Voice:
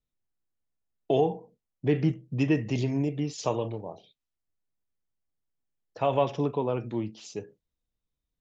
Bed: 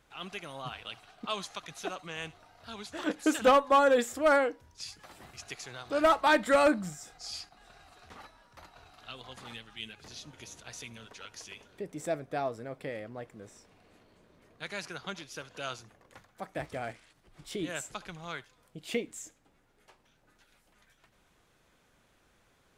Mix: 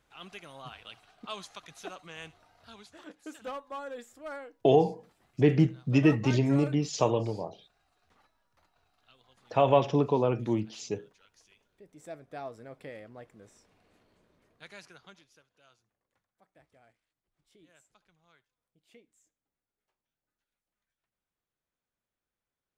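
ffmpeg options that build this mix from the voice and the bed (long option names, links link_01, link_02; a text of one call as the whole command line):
ffmpeg -i stem1.wav -i stem2.wav -filter_complex "[0:a]adelay=3550,volume=2.5dB[link_01];[1:a]volume=6.5dB,afade=type=out:start_time=2.58:duration=0.51:silence=0.251189,afade=type=in:start_time=11.76:duration=0.91:silence=0.266073,afade=type=out:start_time=14.18:duration=1.3:silence=0.1[link_02];[link_01][link_02]amix=inputs=2:normalize=0" out.wav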